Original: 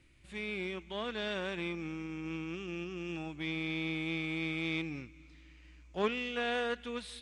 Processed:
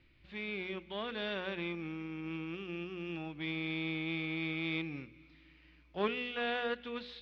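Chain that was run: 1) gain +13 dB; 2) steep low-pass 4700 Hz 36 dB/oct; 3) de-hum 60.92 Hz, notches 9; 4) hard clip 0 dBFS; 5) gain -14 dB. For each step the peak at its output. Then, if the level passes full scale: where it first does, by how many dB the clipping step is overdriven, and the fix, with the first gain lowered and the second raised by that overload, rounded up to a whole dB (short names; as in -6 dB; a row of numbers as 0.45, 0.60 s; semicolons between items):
-4.5, -4.5, -5.0, -5.0, -19.0 dBFS; no overload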